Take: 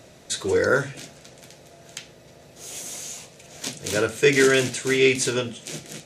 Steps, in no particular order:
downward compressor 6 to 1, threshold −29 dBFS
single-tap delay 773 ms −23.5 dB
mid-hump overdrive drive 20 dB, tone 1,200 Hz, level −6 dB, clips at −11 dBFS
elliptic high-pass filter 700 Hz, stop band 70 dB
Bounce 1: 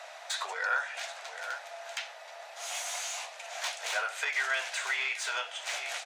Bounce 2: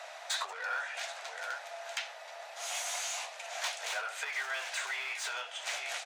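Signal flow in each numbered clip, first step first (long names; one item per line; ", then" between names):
single-tap delay, then downward compressor, then mid-hump overdrive, then elliptic high-pass filter
single-tap delay, then mid-hump overdrive, then downward compressor, then elliptic high-pass filter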